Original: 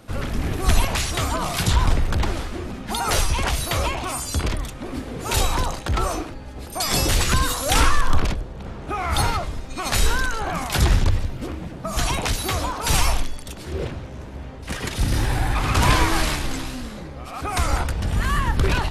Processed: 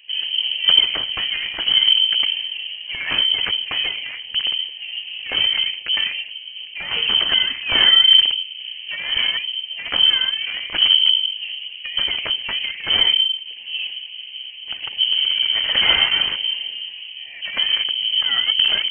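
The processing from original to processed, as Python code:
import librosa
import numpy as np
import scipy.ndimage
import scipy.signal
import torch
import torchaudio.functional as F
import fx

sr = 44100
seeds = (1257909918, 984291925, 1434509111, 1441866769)

y = fx.wiener(x, sr, points=25)
y = fx.freq_invert(y, sr, carrier_hz=3100)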